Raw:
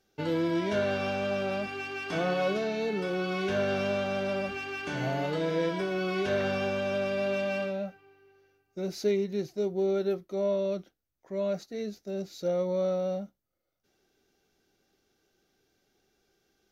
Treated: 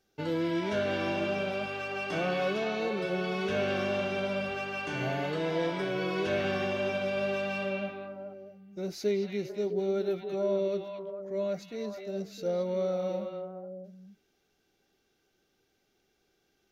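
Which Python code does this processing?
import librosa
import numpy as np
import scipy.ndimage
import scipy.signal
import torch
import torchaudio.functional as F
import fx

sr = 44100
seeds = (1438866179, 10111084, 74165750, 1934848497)

y = fx.echo_stepped(x, sr, ms=220, hz=2600.0, octaves=-1.4, feedback_pct=70, wet_db=0.0)
y = F.gain(torch.from_numpy(y), -2.0).numpy()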